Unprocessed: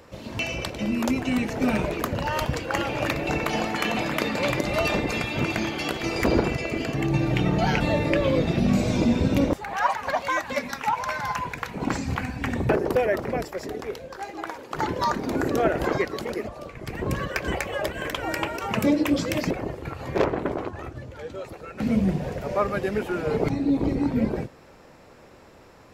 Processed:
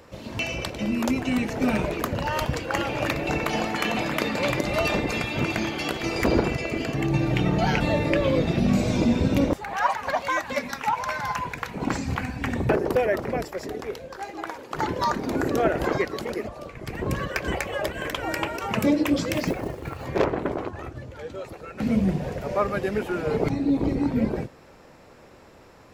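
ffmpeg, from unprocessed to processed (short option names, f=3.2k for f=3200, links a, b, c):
-filter_complex "[0:a]asettb=1/sr,asplit=3[a][b][c];[a]atrim=end=19.344[d];[b]atrim=start=19.34:end=20.06,asetpts=PTS-STARTPTS,afade=t=in:d=0.004:c=qsin,afade=t=out:st=0.716:d=0.004:c=qsin,acrusher=bits=6:mode=log:mix=0:aa=0.000001[e];[c]atrim=start=20.056[f];[d][e]acrossfade=d=0.004:c1=hsin:c2=qsin[g];[g][f]acrossfade=d=0.004:c1=qsin:c2=hsin"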